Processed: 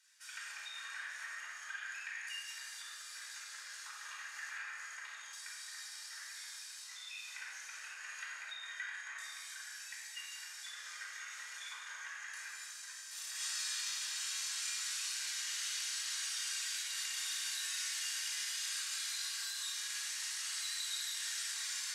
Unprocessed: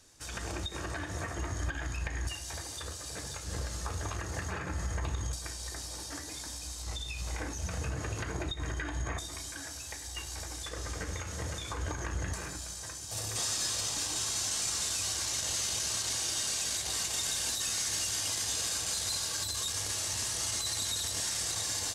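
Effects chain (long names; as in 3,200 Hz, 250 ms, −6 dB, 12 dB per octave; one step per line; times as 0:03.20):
four-pole ladder high-pass 1,400 Hz, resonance 40%
rectangular room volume 2,100 cubic metres, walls mixed, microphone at 4.7 metres
level −4 dB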